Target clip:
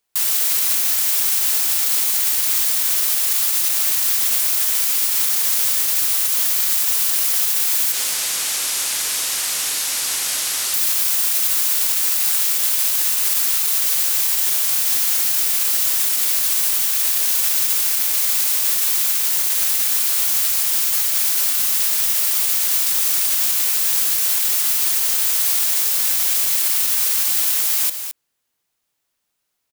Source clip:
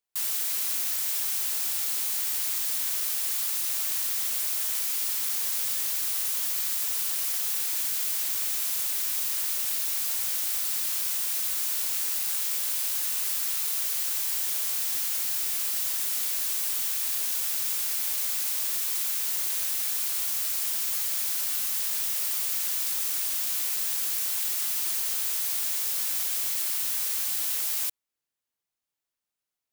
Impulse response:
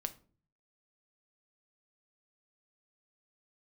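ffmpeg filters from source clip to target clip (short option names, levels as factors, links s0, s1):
-filter_complex "[0:a]asettb=1/sr,asplit=3[s0][s1][s2];[s0]atrim=end=7.924[s3];[s1]atrim=start=7.92:end=10.74,asetpts=PTS-STARTPTS,afade=t=in:d=0.004:c=qsin,afade=t=out:st=2.816:d=0.004:c=qsin,lowpass=10000[s4];[s2]atrim=start=10.736[s5];[s3][s4]acrossfade=d=0.004:c1=hsin:c2=qsin[s6];[s6][s5]acrossfade=d=0.004:c1=qsin:c2=hsin,aecho=1:1:216:0.266,alimiter=level_in=9.44:limit=0.891:release=50:level=0:latency=1,volume=0.447"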